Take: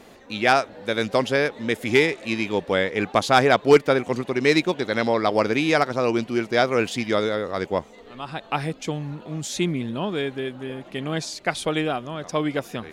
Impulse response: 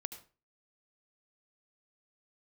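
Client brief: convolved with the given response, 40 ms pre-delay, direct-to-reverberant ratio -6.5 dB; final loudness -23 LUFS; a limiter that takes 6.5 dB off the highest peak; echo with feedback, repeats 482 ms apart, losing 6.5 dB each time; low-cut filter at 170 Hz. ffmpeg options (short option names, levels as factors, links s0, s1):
-filter_complex "[0:a]highpass=170,alimiter=limit=0.355:level=0:latency=1,aecho=1:1:482|964|1446|1928|2410|2892:0.473|0.222|0.105|0.0491|0.0231|0.0109,asplit=2[s0][s1];[1:a]atrim=start_sample=2205,adelay=40[s2];[s1][s2]afir=irnorm=-1:irlink=0,volume=2.66[s3];[s0][s3]amix=inputs=2:normalize=0,volume=0.447"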